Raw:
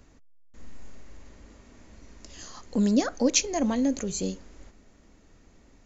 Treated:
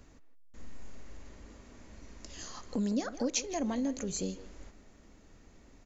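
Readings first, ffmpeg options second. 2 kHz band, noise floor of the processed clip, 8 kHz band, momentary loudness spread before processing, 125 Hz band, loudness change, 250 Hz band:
−8.0 dB, −59 dBFS, can't be measured, 20 LU, −7.0 dB, −9.0 dB, −8.0 dB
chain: -filter_complex "[0:a]acompressor=threshold=-34dB:ratio=2,asplit=2[link_01][link_02];[link_02]adelay=160,highpass=300,lowpass=3400,asoftclip=type=hard:threshold=-26.5dB,volume=-12dB[link_03];[link_01][link_03]amix=inputs=2:normalize=0,volume=-1dB"

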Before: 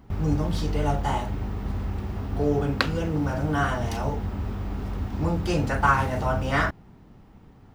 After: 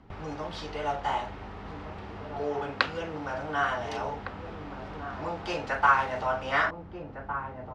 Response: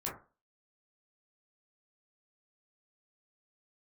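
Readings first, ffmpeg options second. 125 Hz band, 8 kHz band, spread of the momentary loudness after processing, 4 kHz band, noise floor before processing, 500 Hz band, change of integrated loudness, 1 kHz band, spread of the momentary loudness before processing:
−15.5 dB, −9.0 dB, 16 LU, −2.5 dB, −51 dBFS, −4.0 dB, −4.5 dB, −0.5 dB, 9 LU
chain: -filter_complex "[0:a]lowpass=4100,lowshelf=frequency=240:gain=-6.5,asplit=2[link_01][link_02];[link_02]adelay=1458,volume=-9dB,highshelf=frequency=4000:gain=-32.8[link_03];[link_01][link_03]amix=inputs=2:normalize=0,acrossover=split=450|710[link_04][link_05][link_06];[link_04]acompressor=threshold=-41dB:ratio=6[link_07];[link_07][link_05][link_06]amix=inputs=3:normalize=0"

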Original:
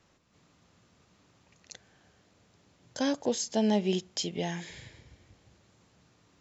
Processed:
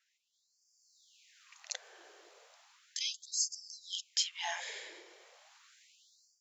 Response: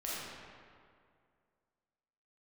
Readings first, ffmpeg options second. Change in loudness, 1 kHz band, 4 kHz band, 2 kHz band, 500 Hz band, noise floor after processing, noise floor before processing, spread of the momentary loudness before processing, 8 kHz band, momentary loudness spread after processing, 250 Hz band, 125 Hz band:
−6.5 dB, −7.5 dB, +2.0 dB, −0.5 dB, −22.0 dB, −79 dBFS, −67 dBFS, 18 LU, can't be measured, 17 LU, below −35 dB, below −40 dB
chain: -af "bass=frequency=250:gain=13,treble=frequency=4000:gain=0,dynaudnorm=framelen=480:gausssize=3:maxgain=15dB,afftfilt=real='re*gte(b*sr/1024,320*pow(4600/320,0.5+0.5*sin(2*PI*0.35*pts/sr)))':imag='im*gte(b*sr/1024,320*pow(4600/320,0.5+0.5*sin(2*PI*0.35*pts/sr)))':win_size=1024:overlap=0.75,volume=-7.5dB"

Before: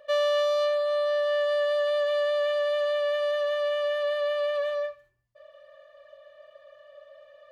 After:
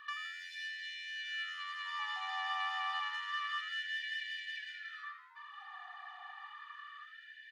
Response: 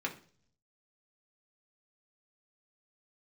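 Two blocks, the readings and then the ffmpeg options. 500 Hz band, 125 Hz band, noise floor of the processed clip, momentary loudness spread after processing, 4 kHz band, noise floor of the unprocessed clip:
below −40 dB, can't be measured, −55 dBFS, 13 LU, −5.5 dB, −58 dBFS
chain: -filter_complex "[0:a]asplit=2[link_01][link_02];[link_02]aecho=0:1:222:0.266[link_03];[link_01][link_03]amix=inputs=2:normalize=0,asoftclip=type=tanh:threshold=-27dB,acompressor=threshold=-35dB:ratio=6,asplit=2[link_04][link_05];[link_05]asplit=5[link_06][link_07][link_08][link_09][link_10];[link_06]adelay=82,afreqshift=88,volume=-13dB[link_11];[link_07]adelay=164,afreqshift=176,volume=-19.2dB[link_12];[link_08]adelay=246,afreqshift=264,volume=-25.4dB[link_13];[link_09]adelay=328,afreqshift=352,volume=-31.6dB[link_14];[link_10]adelay=410,afreqshift=440,volume=-37.8dB[link_15];[link_11][link_12][link_13][link_14][link_15]amix=inputs=5:normalize=0[link_16];[link_04][link_16]amix=inputs=2:normalize=0,asplit=2[link_17][link_18];[link_18]highpass=frequency=720:poles=1,volume=9dB,asoftclip=type=tanh:threshold=-29dB[link_19];[link_17][link_19]amix=inputs=2:normalize=0,lowpass=frequency=1100:poles=1,volume=-6dB,afftfilt=real='re*gte(b*sr/1024,690*pow(1600/690,0.5+0.5*sin(2*PI*0.29*pts/sr)))':imag='im*gte(b*sr/1024,690*pow(1600/690,0.5+0.5*sin(2*PI*0.29*pts/sr)))':win_size=1024:overlap=0.75,volume=10.5dB"

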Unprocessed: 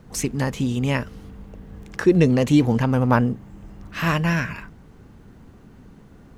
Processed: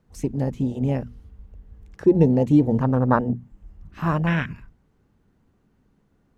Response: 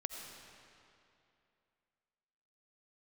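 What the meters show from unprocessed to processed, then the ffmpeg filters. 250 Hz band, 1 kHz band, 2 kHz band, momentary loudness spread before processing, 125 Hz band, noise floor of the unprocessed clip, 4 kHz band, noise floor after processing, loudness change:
−0.5 dB, −1.0 dB, −6.0 dB, 17 LU, −1.0 dB, −48 dBFS, below −10 dB, −65 dBFS, −1.0 dB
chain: -af "afwtdn=0.0708,bandreject=frequency=60:width_type=h:width=6,bandreject=frequency=120:width_type=h:width=6,bandreject=frequency=180:width_type=h:width=6,bandreject=frequency=240:width_type=h:width=6"

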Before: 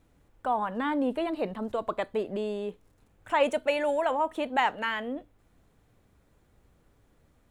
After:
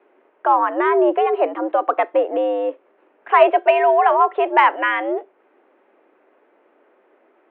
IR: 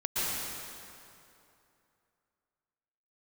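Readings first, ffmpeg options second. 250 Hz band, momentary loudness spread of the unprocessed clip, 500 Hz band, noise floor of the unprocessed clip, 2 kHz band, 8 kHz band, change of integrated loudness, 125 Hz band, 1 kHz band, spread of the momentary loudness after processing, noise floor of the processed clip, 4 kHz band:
+6.0 dB, 8 LU, +12.0 dB, −66 dBFS, +10.5 dB, below −20 dB, +12.0 dB, can't be measured, +14.0 dB, 9 LU, −60 dBFS, +3.5 dB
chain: -af "highpass=frequency=230:width_type=q:width=0.5412,highpass=frequency=230:width_type=q:width=1.307,lowpass=frequency=2800:width_type=q:width=0.5176,lowpass=frequency=2800:width_type=q:width=0.7071,lowpass=frequency=2800:width_type=q:width=1.932,afreqshift=97,aemphasis=mode=reproduction:type=75kf,acontrast=66,volume=6.5dB"

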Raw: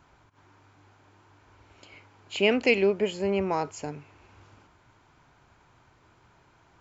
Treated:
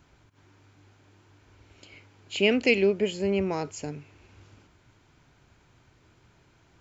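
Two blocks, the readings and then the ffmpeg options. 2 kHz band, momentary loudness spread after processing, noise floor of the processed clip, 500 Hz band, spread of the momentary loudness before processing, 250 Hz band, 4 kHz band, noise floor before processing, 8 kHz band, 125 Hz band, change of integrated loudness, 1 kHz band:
+0.5 dB, 16 LU, −62 dBFS, 0.0 dB, 17 LU, +1.5 dB, +1.0 dB, −62 dBFS, can't be measured, +2.0 dB, +0.5 dB, −5.5 dB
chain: -af "equalizer=frequency=980:width_type=o:width=1.5:gain=-9,volume=2.5dB"

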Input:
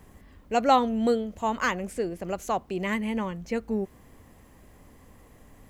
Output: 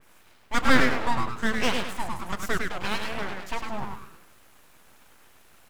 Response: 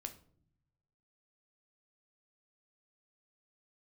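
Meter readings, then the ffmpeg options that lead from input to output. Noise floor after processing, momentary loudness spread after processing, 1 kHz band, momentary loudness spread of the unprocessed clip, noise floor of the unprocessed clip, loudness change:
−55 dBFS, 13 LU, −2.5 dB, 10 LU, −54 dBFS, 0.0 dB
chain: -filter_complex "[0:a]highpass=410,asplit=6[link_01][link_02][link_03][link_04][link_05][link_06];[link_02]adelay=103,afreqshift=88,volume=-4dB[link_07];[link_03]adelay=206,afreqshift=176,volume=-12.2dB[link_08];[link_04]adelay=309,afreqshift=264,volume=-20.4dB[link_09];[link_05]adelay=412,afreqshift=352,volume=-28.5dB[link_10];[link_06]adelay=515,afreqshift=440,volume=-36.7dB[link_11];[link_01][link_07][link_08][link_09][link_10][link_11]amix=inputs=6:normalize=0,asplit=2[link_12][link_13];[1:a]atrim=start_sample=2205[link_14];[link_13][link_14]afir=irnorm=-1:irlink=0,volume=-0.5dB[link_15];[link_12][link_15]amix=inputs=2:normalize=0,aeval=exprs='abs(val(0))':channel_layout=same,adynamicequalizer=threshold=0.0112:dfrequency=3000:dqfactor=0.7:tfrequency=3000:tqfactor=0.7:attack=5:release=100:ratio=0.375:range=3:mode=cutabove:tftype=highshelf"

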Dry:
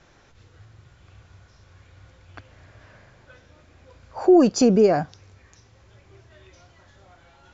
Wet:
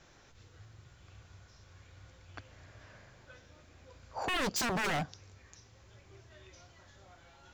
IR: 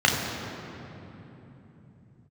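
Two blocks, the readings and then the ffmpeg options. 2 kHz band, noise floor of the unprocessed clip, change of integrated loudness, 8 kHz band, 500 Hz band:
+3.0 dB, −56 dBFS, −15.5 dB, can't be measured, −21.5 dB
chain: -af "highshelf=frequency=4700:gain=7.5,aeval=exprs='0.0841*(abs(mod(val(0)/0.0841+3,4)-2)-1)':channel_layout=same,volume=-5.5dB"

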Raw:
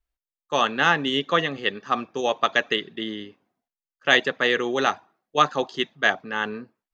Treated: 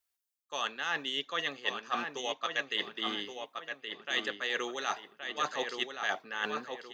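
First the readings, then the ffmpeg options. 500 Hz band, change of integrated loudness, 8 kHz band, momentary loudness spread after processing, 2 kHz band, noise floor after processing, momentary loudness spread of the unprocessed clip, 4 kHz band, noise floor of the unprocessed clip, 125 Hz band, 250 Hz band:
−13.5 dB, −11.5 dB, can't be measured, 7 LU, −11.0 dB, −84 dBFS, 11 LU, −7.5 dB, below −85 dBFS, −20.0 dB, −14.5 dB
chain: -filter_complex "[0:a]highpass=frequency=680:poles=1,highshelf=frequency=4200:gain=10,areverse,acompressor=threshold=-31dB:ratio=6,areverse,asplit=2[link_01][link_02];[link_02]adelay=1122,lowpass=frequency=3200:poles=1,volume=-5.5dB,asplit=2[link_03][link_04];[link_04]adelay=1122,lowpass=frequency=3200:poles=1,volume=0.39,asplit=2[link_05][link_06];[link_06]adelay=1122,lowpass=frequency=3200:poles=1,volume=0.39,asplit=2[link_07][link_08];[link_08]adelay=1122,lowpass=frequency=3200:poles=1,volume=0.39,asplit=2[link_09][link_10];[link_10]adelay=1122,lowpass=frequency=3200:poles=1,volume=0.39[link_11];[link_01][link_03][link_05][link_07][link_09][link_11]amix=inputs=6:normalize=0"

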